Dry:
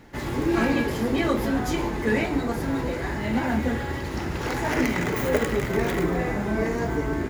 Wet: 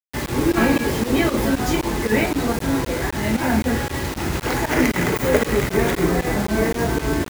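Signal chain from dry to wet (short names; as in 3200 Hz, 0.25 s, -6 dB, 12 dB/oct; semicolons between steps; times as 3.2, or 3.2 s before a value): pump 116 bpm, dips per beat 2, -21 dB, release 91 ms; whine 2500 Hz -55 dBFS; bit-crush 6-bit; gain +5.5 dB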